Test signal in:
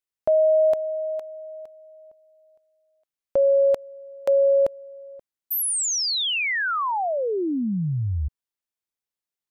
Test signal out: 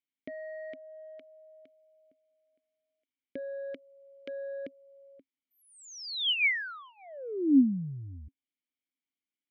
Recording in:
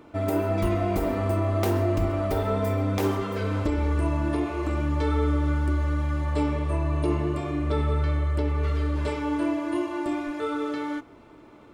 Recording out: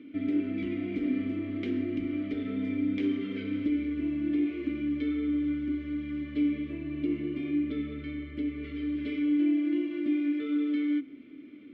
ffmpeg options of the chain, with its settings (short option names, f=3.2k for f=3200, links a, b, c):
-filter_complex "[0:a]lowpass=4.3k,asplit=2[a][b];[b]acompressor=threshold=-29dB:ratio=6:attack=4.1:release=358:detection=rms,volume=3dB[c];[a][c]amix=inputs=2:normalize=0,aeval=exprs='0.398*(cos(1*acos(clip(val(0)/0.398,-1,1)))-cos(1*PI/2))+0.0282*(cos(5*acos(clip(val(0)/0.398,-1,1)))-cos(5*PI/2))+0.00708*(cos(7*acos(clip(val(0)/0.398,-1,1)))-cos(7*PI/2))':c=same,asplit=3[d][e][f];[d]bandpass=f=270:t=q:w=8,volume=0dB[g];[e]bandpass=f=2.29k:t=q:w=8,volume=-6dB[h];[f]bandpass=f=3.01k:t=q:w=8,volume=-9dB[i];[g][h][i]amix=inputs=3:normalize=0,volume=1.5dB"